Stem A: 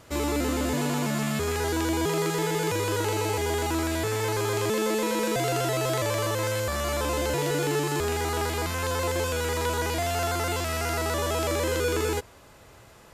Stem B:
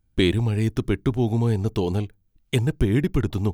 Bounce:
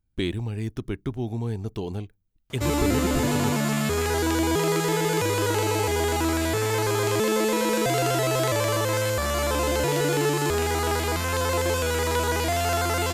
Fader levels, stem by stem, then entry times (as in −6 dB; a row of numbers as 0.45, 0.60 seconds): +3.0, −7.5 decibels; 2.50, 0.00 seconds